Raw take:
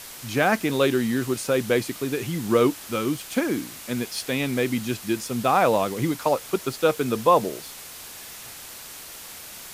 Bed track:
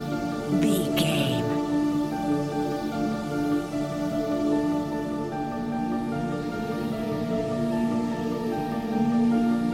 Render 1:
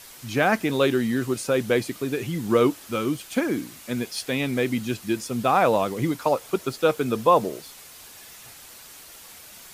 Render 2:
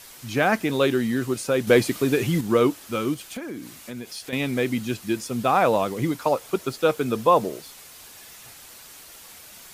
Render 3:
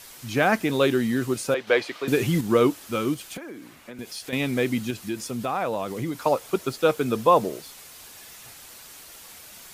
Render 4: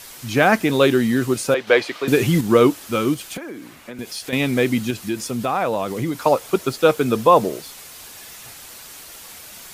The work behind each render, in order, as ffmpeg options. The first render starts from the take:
-af "afftdn=nr=6:nf=-41"
-filter_complex "[0:a]asettb=1/sr,asplit=3[s0][s1][s2];[s0]atrim=end=1.674[s3];[s1]atrim=start=1.67:end=2.41,asetpts=PTS-STARTPTS,afade=t=in:d=0.004:c=qsin,afade=t=out:st=0.736:d=0.004:c=qsin,acontrast=48[s4];[s2]atrim=start=2.406[s5];[s3][s4]acrossfade=d=0.004:c1=hsin:c2=qsin[s6];[s6][s5]acrossfade=d=0.004:c1=qsin:c2=hsin,asettb=1/sr,asplit=3[s7][s8][s9];[s7]atrim=end=3.144[s10];[s8]atrim=start=3.14:end=4.33,asetpts=PTS-STARTPTS,afade=t=in:d=0.004:c=qsin,afade=t=out:st=1.186:d=0.004:c=qsin,acompressor=threshold=0.0224:ratio=3:attack=3.2:release=140:knee=1:detection=peak[s11];[s9]atrim=start=4.326[s12];[s10][s11]acrossfade=d=0.004:c1=hsin:c2=qsin[s13];[s13][s12]acrossfade=d=0.004:c1=qsin:c2=hsin"
-filter_complex "[0:a]asettb=1/sr,asplit=3[s0][s1][s2];[s0]atrim=end=1.544[s3];[s1]atrim=start=1.54:end=2.08,asetpts=PTS-STARTPTS,afade=t=in:d=0.004:c=qsin,afade=t=out:st=0.536:d=0.004:c=qsin,acrossover=split=440 4700:gain=0.0891 1 0.1[s4][s5][s6];[s4][s5][s6]amix=inputs=3:normalize=0[s7];[s2]atrim=start=2.076[s8];[s3][s7]acrossfade=d=0.004:c1=hsin:c2=qsin[s9];[s9][s8]acrossfade=d=0.004:c1=qsin:c2=hsin,asettb=1/sr,asplit=3[s10][s11][s12];[s10]atrim=end=3.374[s13];[s11]atrim=start=3.37:end=3.99,asetpts=PTS-STARTPTS,afade=t=in:d=0.004:c=qsin,afade=t=out:st=0.616:d=0.004:c=qsin,acrossover=split=330|2900[s14][s15][s16];[s14]acompressor=threshold=0.00398:ratio=4[s17];[s15]acompressor=threshold=0.0141:ratio=4[s18];[s16]acompressor=threshold=0.00126:ratio=4[s19];[s17][s18][s19]amix=inputs=3:normalize=0[s20];[s12]atrim=start=3.986[s21];[s13][s20]acrossfade=d=0.004:c1=hsin:c2=qsin[s22];[s22][s21]acrossfade=d=0.004:c1=qsin:c2=hsin,asettb=1/sr,asplit=3[s23][s24][s25];[s23]atrim=end=4.904[s26];[s24]atrim=start=4.9:end=6.21,asetpts=PTS-STARTPTS,afade=t=in:d=0.004:c=qsin,afade=t=out:st=1.306:d=0.004:c=qsin,acompressor=threshold=0.0398:ratio=2:attack=3.2:release=140:knee=1:detection=peak[s27];[s25]atrim=start=6.206[s28];[s26][s27]acrossfade=d=0.004:c1=hsin:c2=qsin[s29];[s29][s28]acrossfade=d=0.004:c1=qsin:c2=hsin"
-af "volume=1.88,alimiter=limit=0.891:level=0:latency=1"

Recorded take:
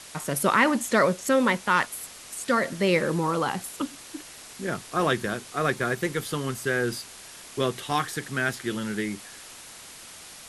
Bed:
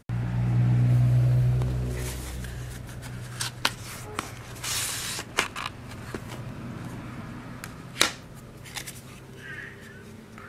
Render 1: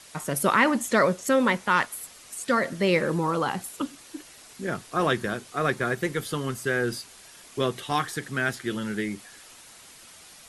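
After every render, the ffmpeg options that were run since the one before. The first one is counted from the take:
-af "afftdn=nr=6:nf=-45"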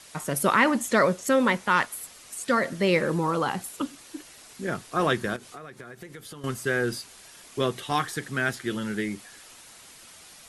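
-filter_complex "[0:a]asettb=1/sr,asplit=3[s0][s1][s2];[s0]atrim=end=5.364[s3];[s1]atrim=start=5.36:end=6.44,asetpts=PTS-STARTPTS,afade=t=in:d=0.004:c=qsin,afade=t=out:st=1.076:d=0.004:c=qsin,acompressor=threshold=0.0126:ratio=12:attack=3.2:release=140:knee=1:detection=peak[s4];[s2]atrim=start=6.436[s5];[s3][s4]acrossfade=d=0.004:c1=hsin:c2=qsin[s6];[s6][s5]acrossfade=d=0.004:c1=qsin:c2=hsin"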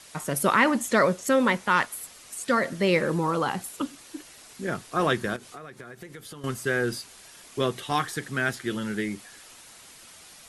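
-af anull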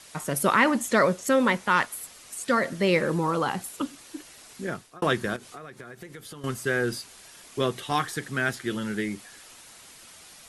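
-filter_complex "[0:a]asplit=2[s0][s1];[s0]atrim=end=5.02,asetpts=PTS-STARTPTS,afade=t=out:st=4.61:d=0.41[s2];[s1]atrim=start=5.02,asetpts=PTS-STARTPTS,afade=t=in:d=0.004:c=hsin[s3];[s2][s3]concat=n=2:v=0:a=1"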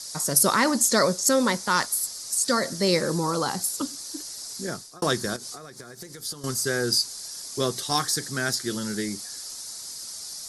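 -af "highshelf=f=3700:t=q:w=3:g=10"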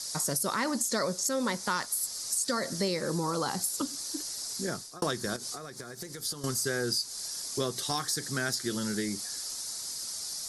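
-af "alimiter=limit=0.251:level=0:latency=1:release=284,acompressor=threshold=0.0355:ratio=2.5"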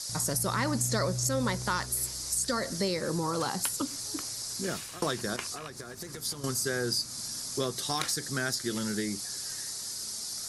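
-filter_complex "[1:a]volume=0.2[s0];[0:a][s0]amix=inputs=2:normalize=0"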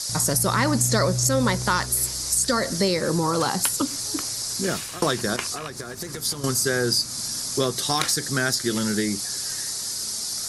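-af "volume=2.51"

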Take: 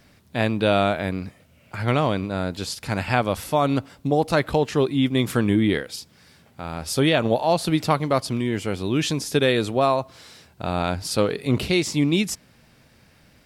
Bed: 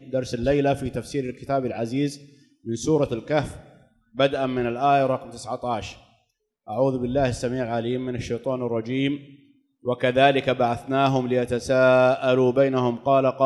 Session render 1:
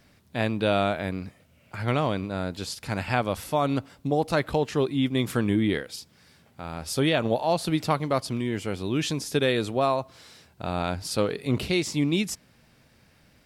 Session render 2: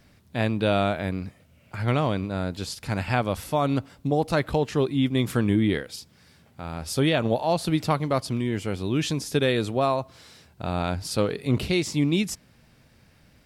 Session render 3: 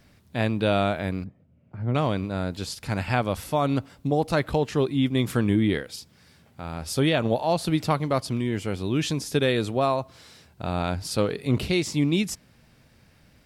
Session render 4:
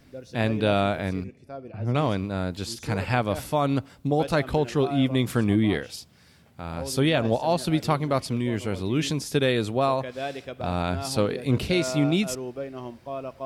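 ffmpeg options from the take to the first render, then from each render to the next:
-af "volume=0.631"
-af "lowshelf=f=170:g=5"
-filter_complex "[0:a]asettb=1/sr,asplit=3[s0][s1][s2];[s0]atrim=end=1.244[s3];[s1]atrim=start=1.24:end=1.95,asetpts=PTS-STARTPTS,afade=t=in:d=0.004:c=qsin,afade=t=out:st=0.706:d=0.004:c=qsin,bandpass=f=180:t=q:w=0.69[s4];[s2]atrim=start=1.946[s5];[s3][s4]acrossfade=d=0.004:c1=hsin:c2=qsin[s6];[s6][s5]acrossfade=d=0.004:c1=qsin:c2=hsin"
-filter_complex "[1:a]volume=0.178[s0];[0:a][s0]amix=inputs=2:normalize=0"

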